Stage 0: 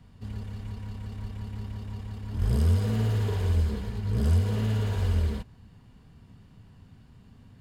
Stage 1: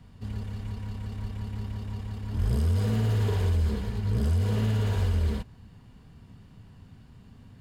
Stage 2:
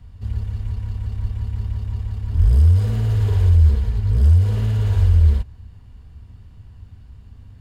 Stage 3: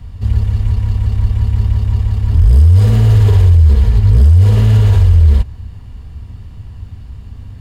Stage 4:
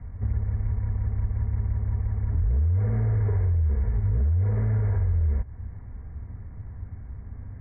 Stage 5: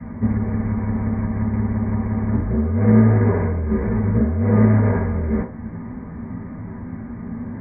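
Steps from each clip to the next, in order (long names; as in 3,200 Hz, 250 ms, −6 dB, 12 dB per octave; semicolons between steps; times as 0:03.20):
brickwall limiter −20 dBFS, peak gain reduction 6 dB; level +2 dB
low shelf with overshoot 110 Hz +11.5 dB, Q 1.5
notch filter 1,500 Hz, Q 17; boost into a limiter +12.5 dB; level −1 dB
Chebyshev low-pass with heavy ripple 2,200 Hz, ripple 3 dB; downward compressor 2.5 to 1, threshold −19 dBFS, peak gain reduction 8 dB; level −5 dB
convolution reverb RT60 0.40 s, pre-delay 3 ms, DRR −12.5 dB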